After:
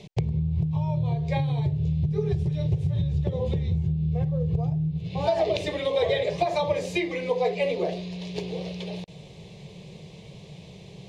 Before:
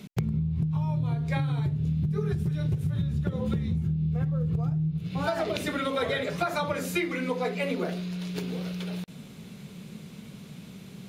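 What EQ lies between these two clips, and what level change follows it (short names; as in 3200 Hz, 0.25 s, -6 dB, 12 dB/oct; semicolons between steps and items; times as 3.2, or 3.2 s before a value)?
air absorption 110 m; fixed phaser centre 580 Hz, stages 4; +7.0 dB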